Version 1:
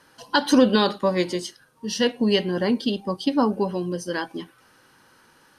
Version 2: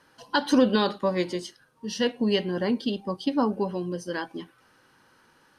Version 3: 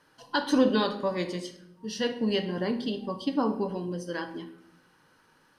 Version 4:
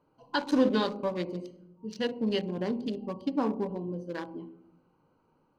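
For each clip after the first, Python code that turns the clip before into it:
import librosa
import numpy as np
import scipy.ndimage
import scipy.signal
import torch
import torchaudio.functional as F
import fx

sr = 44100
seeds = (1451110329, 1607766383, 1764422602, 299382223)

y1 = fx.high_shelf(x, sr, hz=6100.0, db=-6.0)
y1 = y1 * librosa.db_to_amplitude(-3.5)
y2 = fx.room_shoebox(y1, sr, seeds[0], volume_m3=200.0, walls='mixed', distance_m=0.45)
y2 = y2 * librosa.db_to_amplitude(-3.5)
y3 = fx.wiener(y2, sr, points=25)
y3 = y3 * librosa.db_to_amplitude(-1.5)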